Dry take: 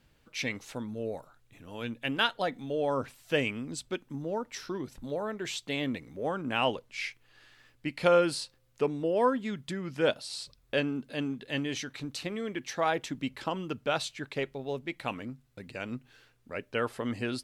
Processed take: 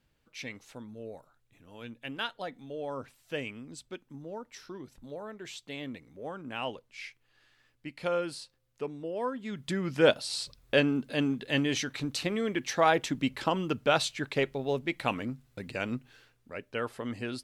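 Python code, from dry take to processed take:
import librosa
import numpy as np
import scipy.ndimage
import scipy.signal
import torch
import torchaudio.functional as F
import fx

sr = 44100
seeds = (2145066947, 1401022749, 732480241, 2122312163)

y = fx.gain(x, sr, db=fx.line((9.34, -7.5), (9.75, 4.5), (15.83, 4.5), (16.53, -3.0)))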